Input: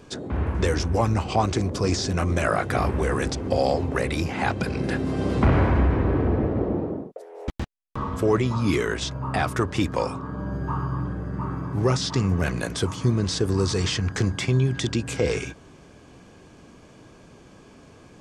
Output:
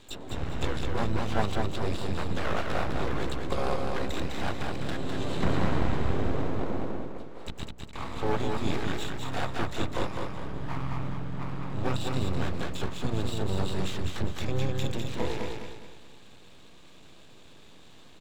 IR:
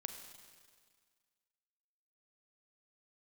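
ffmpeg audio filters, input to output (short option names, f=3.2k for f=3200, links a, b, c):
-filter_complex "[0:a]bandreject=f=60:t=h:w=6,bandreject=f=120:t=h:w=6,bandreject=f=180:t=h:w=6,bandreject=f=240:t=h:w=6,bandreject=f=300:t=h:w=6,bandreject=f=360:t=h:w=6,bandreject=f=420:t=h:w=6,acrossover=split=630|1800[a][b][c];[c]acompressor=threshold=-45dB:ratio=12[d];[a][b][d]amix=inputs=3:normalize=0,lowpass=f=3.8k:t=q:w=10,aeval=exprs='max(val(0),0)':c=same,asplit=3[e][f][g];[f]asetrate=33038,aresample=44100,atempo=1.33484,volume=-6dB[h];[g]asetrate=88200,aresample=44100,atempo=0.5,volume=-9dB[i];[e][h][i]amix=inputs=3:normalize=0,aecho=1:1:205|410|615|820|1025:0.631|0.246|0.096|0.0374|0.0146,volume=-5.5dB"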